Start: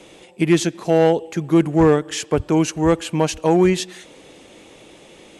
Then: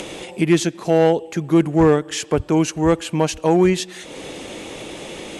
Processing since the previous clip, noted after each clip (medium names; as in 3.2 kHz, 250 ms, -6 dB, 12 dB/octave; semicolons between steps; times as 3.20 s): upward compressor, threshold -21 dBFS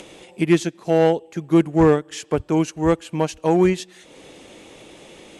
upward expansion 1.5:1, over -32 dBFS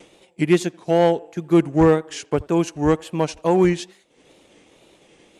wow and flutter 110 cents; expander -36 dBFS; band-passed feedback delay 83 ms, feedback 46%, band-pass 790 Hz, level -22.5 dB